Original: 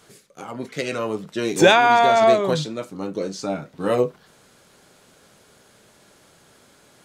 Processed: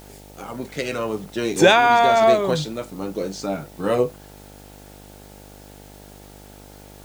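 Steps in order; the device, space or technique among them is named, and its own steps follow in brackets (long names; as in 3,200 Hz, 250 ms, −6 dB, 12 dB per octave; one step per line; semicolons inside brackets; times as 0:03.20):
video cassette with head-switching buzz (hum with harmonics 50 Hz, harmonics 18, −45 dBFS −3 dB per octave; white noise bed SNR 29 dB)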